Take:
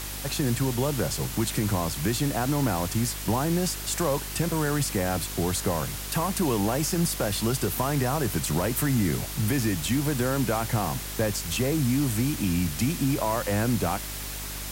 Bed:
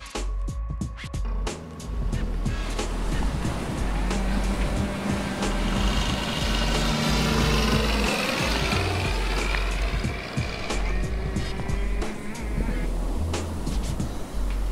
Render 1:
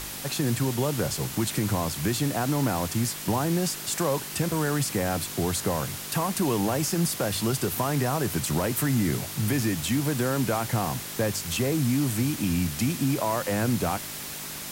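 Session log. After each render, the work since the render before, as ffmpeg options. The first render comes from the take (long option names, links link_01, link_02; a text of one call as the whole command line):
ffmpeg -i in.wav -af "bandreject=frequency=50:width_type=h:width=4,bandreject=frequency=100:width_type=h:width=4" out.wav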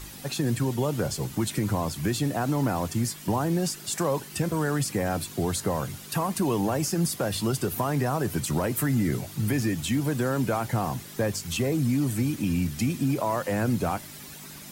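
ffmpeg -i in.wav -af "afftdn=noise_reduction=10:noise_floor=-37" out.wav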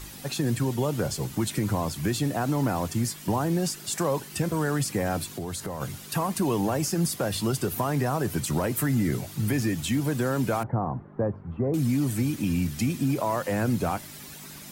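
ffmpeg -i in.wav -filter_complex "[0:a]asplit=3[link_01][link_02][link_03];[link_01]afade=type=out:start_time=5.31:duration=0.02[link_04];[link_02]acompressor=threshold=-30dB:ratio=4:attack=3.2:release=140:knee=1:detection=peak,afade=type=in:start_time=5.31:duration=0.02,afade=type=out:start_time=5.8:duration=0.02[link_05];[link_03]afade=type=in:start_time=5.8:duration=0.02[link_06];[link_04][link_05][link_06]amix=inputs=3:normalize=0,asettb=1/sr,asplit=3[link_07][link_08][link_09];[link_07]atrim=end=10.634[link_10];[link_08]atrim=start=10.63:end=11.74,asetpts=PTS-STARTPTS,afade=type=in:duration=0.004:curve=qsin,afade=type=out:start_time=1.106:duration=0.004:curve=qsin,lowpass=frequency=1200:width=0.5412,lowpass=frequency=1200:width=1.3066[link_11];[link_09]atrim=start=11.736[link_12];[link_10][link_11]acrossfade=duration=0.004:curve1=hsin:curve2=qsin[link_13];[link_13][link_12]acrossfade=duration=0.004:curve1=qsin:curve2=hsin" out.wav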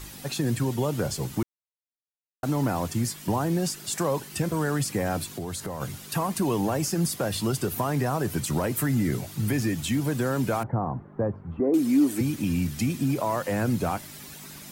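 ffmpeg -i in.wav -filter_complex "[0:a]asettb=1/sr,asplit=3[link_01][link_02][link_03];[link_01]atrim=end=11.604[link_04];[link_02]atrim=start=11.6:end=12.21,asetpts=PTS-STARTPTS,afade=type=in:duration=0.004:curve=qsin,afade=type=out:start_time=0.606:duration=0.004:curve=qsin,lowshelf=frequency=200:width_type=q:width=3:gain=-12[link_05];[link_03]atrim=start=12.206[link_06];[link_04][link_05]acrossfade=duration=0.004:curve1=hsin:curve2=qsin[link_07];[link_07][link_06]acrossfade=duration=0.004:curve1=qsin:curve2=hsin,asplit=3[link_08][link_09][link_10];[link_08]atrim=end=1.43,asetpts=PTS-STARTPTS,afade=type=out:start_time=1.426:duration=0.004:curve=hsin[link_11];[link_09]atrim=start=1.43:end=2.43,asetpts=PTS-STARTPTS,volume=0[link_12];[link_10]atrim=start=2.43,asetpts=PTS-STARTPTS,afade=type=in:duration=0.004:curve=hsin[link_13];[link_11][link_12][link_13]concat=n=3:v=0:a=1" out.wav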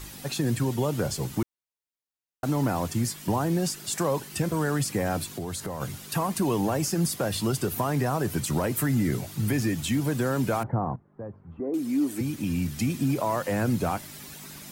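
ffmpeg -i in.wav -filter_complex "[0:a]asplit=2[link_01][link_02];[link_01]atrim=end=10.96,asetpts=PTS-STARTPTS,afade=type=out:start_time=10.956:duration=0.004:curve=hsin:silence=0.149624[link_03];[link_02]atrim=start=10.96,asetpts=PTS-STARTPTS,afade=type=in:duration=2.04:silence=0.149624[link_04];[link_03][link_04]concat=n=2:v=0:a=1" out.wav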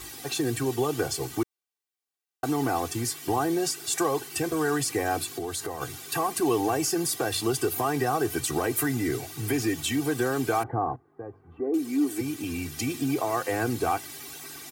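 ffmpeg -i in.wav -af "highpass=frequency=210:poles=1,aecho=1:1:2.6:0.87" out.wav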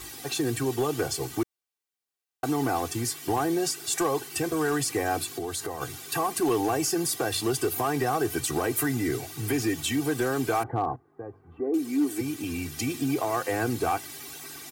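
ffmpeg -i in.wav -af "volume=18.5dB,asoftclip=hard,volume=-18.5dB" out.wav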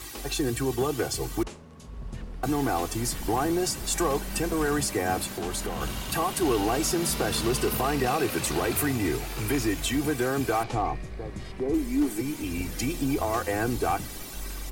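ffmpeg -i in.wav -i bed.wav -filter_complex "[1:a]volume=-10.5dB[link_01];[0:a][link_01]amix=inputs=2:normalize=0" out.wav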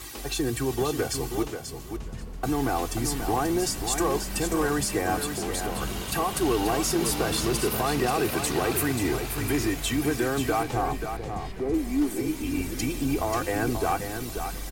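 ffmpeg -i in.wav -af "aecho=1:1:535|1070|1605:0.422|0.0759|0.0137" out.wav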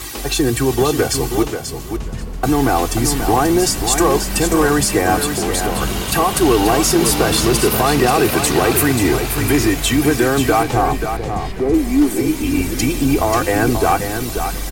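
ffmpeg -i in.wav -af "volume=11dB" out.wav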